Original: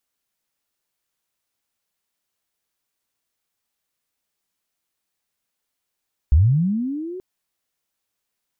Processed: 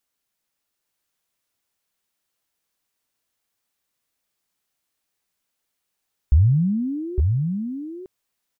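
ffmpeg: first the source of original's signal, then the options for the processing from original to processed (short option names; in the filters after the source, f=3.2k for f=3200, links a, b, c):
-f lavfi -i "aevalsrc='pow(10,(-9-20.5*t/0.88)/20)*sin(2*PI*(62*t+318*t*t/(2*0.88)))':d=0.88:s=44100"
-af "aecho=1:1:859:0.596"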